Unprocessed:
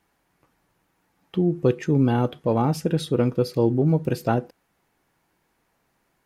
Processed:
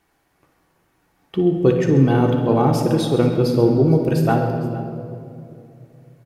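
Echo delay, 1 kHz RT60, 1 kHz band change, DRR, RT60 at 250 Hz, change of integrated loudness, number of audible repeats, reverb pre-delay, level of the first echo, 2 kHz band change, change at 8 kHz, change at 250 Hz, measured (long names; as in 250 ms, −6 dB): 57 ms, 2.3 s, +5.5 dB, 2.0 dB, 3.2 s, +5.0 dB, 3, 3 ms, −11.0 dB, +6.0 dB, +4.5 dB, +5.5 dB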